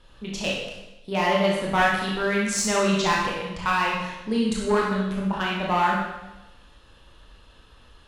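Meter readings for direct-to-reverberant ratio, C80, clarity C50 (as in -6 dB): -4.0 dB, 3.5 dB, 0.5 dB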